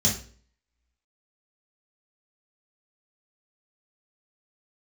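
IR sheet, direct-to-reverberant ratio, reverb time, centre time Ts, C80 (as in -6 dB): -6.0 dB, 0.45 s, 28 ms, 12.5 dB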